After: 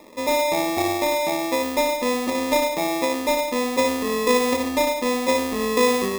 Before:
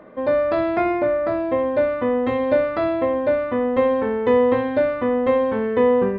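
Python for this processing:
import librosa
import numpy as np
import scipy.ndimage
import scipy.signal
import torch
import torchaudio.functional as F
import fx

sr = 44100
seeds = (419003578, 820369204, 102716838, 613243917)

y = scipy.signal.sosfilt(scipy.signal.butter(4, 220.0, 'highpass', fs=sr, output='sos'), x)
y = fx.peak_eq(y, sr, hz=1100.0, db=-12.5, octaves=0.79)
y = fx.sample_hold(y, sr, seeds[0], rate_hz=1500.0, jitter_pct=0)
y = y + 10.0 ** (-8.5 / 20.0) * np.pad(y, (int(104 * sr / 1000.0), 0))[:len(y)]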